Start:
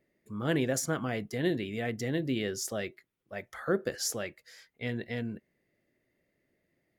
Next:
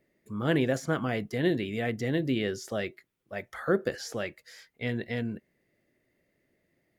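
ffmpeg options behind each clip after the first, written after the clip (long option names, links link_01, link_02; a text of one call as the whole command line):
ffmpeg -i in.wav -filter_complex "[0:a]acrossover=split=3900[link_01][link_02];[link_02]acompressor=threshold=-49dB:ratio=4:attack=1:release=60[link_03];[link_01][link_03]amix=inputs=2:normalize=0,volume=3dB" out.wav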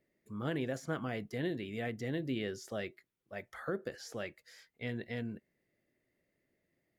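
ffmpeg -i in.wav -af "alimiter=limit=-18.5dB:level=0:latency=1:release=333,volume=-7dB" out.wav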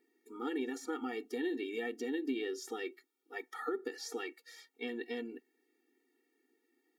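ffmpeg -i in.wav -af "acompressor=threshold=-37dB:ratio=6,afftfilt=real='re*eq(mod(floor(b*sr/1024/240),2),1)':imag='im*eq(mod(floor(b*sr/1024/240),2),1)':win_size=1024:overlap=0.75,volume=7dB" out.wav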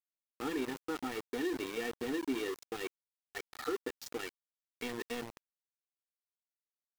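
ffmpeg -i in.wav -af "anlmdn=0.0251,aeval=exprs='val(0)*gte(abs(val(0)),0.0112)':channel_layout=same,volume=1dB" out.wav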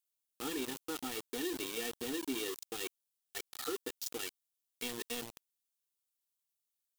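ffmpeg -i in.wav -af "aexciter=amount=2.3:drive=6.9:freq=2800,volume=-3.5dB" out.wav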